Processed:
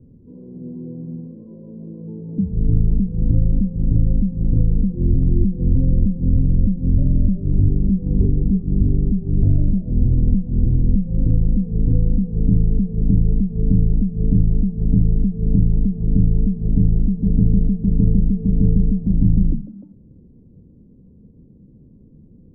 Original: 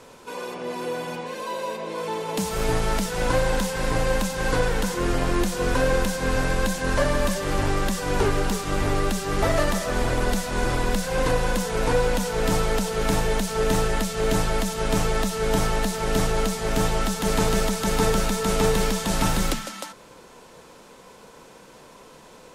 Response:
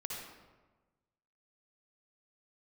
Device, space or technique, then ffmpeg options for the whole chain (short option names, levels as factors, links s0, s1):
the neighbour's flat through the wall: -filter_complex "[0:a]asettb=1/sr,asplit=3[s0][s1][s2];[s0]atrim=end=7.664[s3];[s1]atrim=start=7.66:end=9.13,asetpts=PTS-STARTPTS,afade=t=in:d=0.004:c=qsin,afade=t=out:st=1.466:d=0.004:c=qsin,asplit=2[s4][s5];[s5]adelay=16,volume=0.562[s6];[s4][s6]amix=inputs=2:normalize=0,atrim=end_sample=64827[s7];[s2]atrim=start=9.126[s8];[s3][s7]acrossfade=d=0.004:c1=hsin:c2=qsin[s9];[s9][s8]acrossfade=d=0.004:c1=qsin:c2=hsin,lowpass=f=250:w=0.5412,lowpass=f=250:w=1.3066,equalizer=f=84:t=o:w=0.99:g=7,volume=2.66"